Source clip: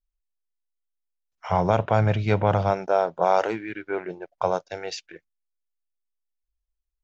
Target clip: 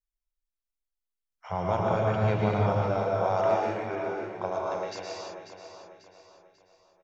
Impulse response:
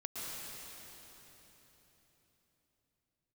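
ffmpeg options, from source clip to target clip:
-filter_complex "[0:a]aecho=1:1:542|1084|1626|2168:0.316|0.133|0.0558|0.0234[link_01];[1:a]atrim=start_sample=2205,afade=type=out:start_time=0.4:duration=0.01,atrim=end_sample=18081[link_02];[link_01][link_02]afir=irnorm=-1:irlink=0,volume=-4.5dB"

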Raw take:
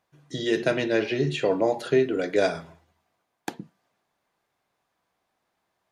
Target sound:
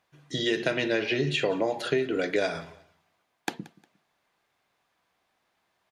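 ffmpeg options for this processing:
ffmpeg -i in.wav -filter_complex "[0:a]equalizer=frequency=2700:width_type=o:width=2.1:gain=5.5,acompressor=threshold=-22dB:ratio=6,asplit=2[link_01][link_02];[link_02]aecho=0:1:178|356:0.0891|0.025[link_03];[link_01][link_03]amix=inputs=2:normalize=0" out.wav

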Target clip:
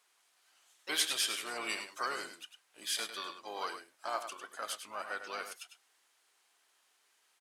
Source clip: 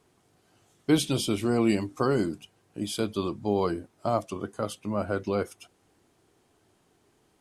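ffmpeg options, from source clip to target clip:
ffmpeg -i in.wav -filter_complex "[0:a]asplit=3[link_01][link_02][link_03];[link_02]asetrate=22050,aresample=44100,atempo=2,volume=-8dB[link_04];[link_03]asetrate=55563,aresample=44100,atempo=0.793701,volume=-11dB[link_05];[link_01][link_04][link_05]amix=inputs=3:normalize=0,highpass=1400,aecho=1:1:101:0.355" out.wav

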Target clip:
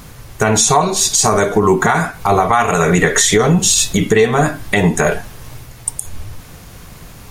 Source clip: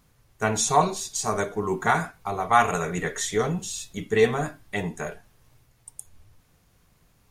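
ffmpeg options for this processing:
ffmpeg -i in.wav -af "acompressor=threshold=-32dB:ratio=16,alimiter=level_in=26.5dB:limit=-1dB:release=50:level=0:latency=1,volume=-1dB" out.wav

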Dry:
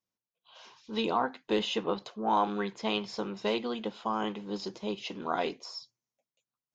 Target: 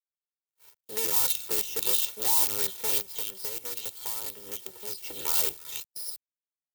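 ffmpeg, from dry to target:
ffmpeg -i in.wav -filter_complex "[0:a]acrossover=split=2600[link_01][link_02];[link_02]adelay=310[link_03];[link_01][link_03]amix=inputs=2:normalize=0,aresample=11025,aresample=44100,bandreject=frequency=368.1:width_type=h:width=4,bandreject=frequency=736.2:width_type=h:width=4,bandreject=frequency=1104.3:width_type=h:width=4,bandreject=frequency=1472.4:width_type=h:width=4,bandreject=frequency=1840.5:width_type=h:width=4,bandreject=frequency=2208.6:width_type=h:width=4,bandreject=frequency=2576.7:width_type=h:width=4,bandreject=frequency=2944.8:width_type=h:width=4,bandreject=frequency=3312.9:width_type=h:width=4,acrusher=bits=6:dc=4:mix=0:aa=0.000001,highpass=92,highshelf=frequency=3400:gain=3,agate=range=-41dB:threshold=-54dB:ratio=16:detection=peak,acrossover=split=160|3000[link_04][link_05][link_06];[link_05]acompressor=threshold=-36dB:ratio=6[link_07];[link_04][link_07][link_06]amix=inputs=3:normalize=0,aecho=1:1:2.2:0.77,asoftclip=type=hard:threshold=-30.5dB,asplit=3[link_08][link_09][link_10];[link_08]afade=type=out:start_time=3.01:duration=0.02[link_11];[link_09]acompressor=threshold=-45dB:ratio=2.5,afade=type=in:start_time=3.01:duration=0.02,afade=type=out:start_time=5.02:duration=0.02[link_12];[link_10]afade=type=in:start_time=5.02:duration=0.02[link_13];[link_11][link_12][link_13]amix=inputs=3:normalize=0,aemphasis=mode=production:type=75fm" out.wav

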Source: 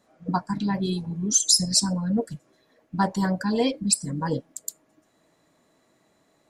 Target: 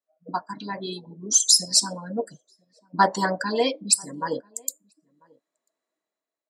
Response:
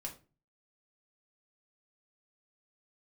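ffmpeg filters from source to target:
-filter_complex "[0:a]highpass=400,bandreject=frequency=810:width=17,afftdn=noise_reduction=28:noise_floor=-48,dynaudnorm=framelen=230:gausssize=7:maxgain=12dB,asplit=2[link_01][link_02];[link_02]adelay=991.3,volume=-29dB,highshelf=frequency=4000:gain=-22.3[link_03];[link_01][link_03]amix=inputs=2:normalize=0,volume=-1dB"

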